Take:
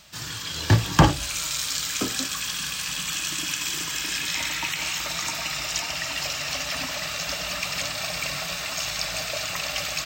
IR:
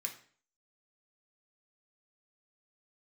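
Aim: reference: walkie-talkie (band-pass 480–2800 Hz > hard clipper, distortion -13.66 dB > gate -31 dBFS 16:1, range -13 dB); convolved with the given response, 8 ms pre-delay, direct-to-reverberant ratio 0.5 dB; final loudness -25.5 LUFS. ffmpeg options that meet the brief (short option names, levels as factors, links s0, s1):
-filter_complex "[0:a]asplit=2[s0][s1];[1:a]atrim=start_sample=2205,adelay=8[s2];[s1][s2]afir=irnorm=-1:irlink=0,volume=1[s3];[s0][s3]amix=inputs=2:normalize=0,highpass=480,lowpass=2800,asoftclip=type=hard:threshold=0.133,agate=range=0.224:threshold=0.0282:ratio=16,volume=1.5"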